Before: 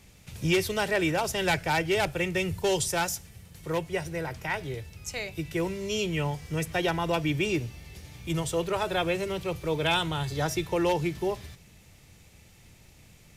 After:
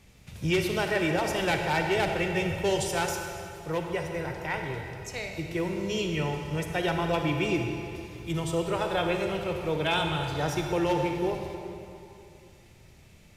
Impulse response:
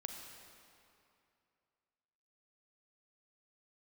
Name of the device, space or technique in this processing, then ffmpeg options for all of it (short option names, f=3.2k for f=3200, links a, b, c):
swimming-pool hall: -filter_complex "[1:a]atrim=start_sample=2205[a];[0:a][a]afir=irnorm=-1:irlink=0,highshelf=f=5.2k:g=-6,volume=2.5dB"